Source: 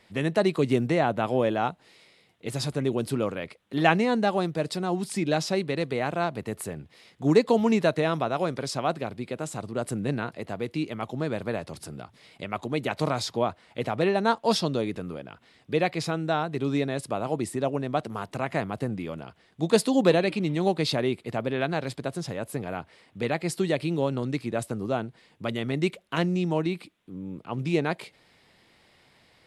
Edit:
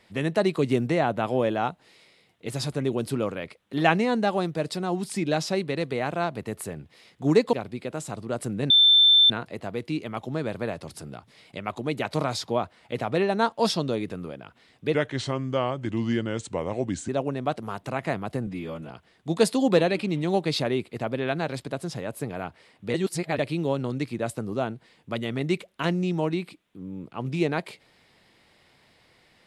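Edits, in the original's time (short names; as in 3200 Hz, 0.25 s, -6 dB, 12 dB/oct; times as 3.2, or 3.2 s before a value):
7.53–8.99 cut
10.16 add tone 3550 Hz -13 dBFS 0.60 s
15.8–17.56 speed 82%
18.94–19.23 stretch 1.5×
23.27–23.72 reverse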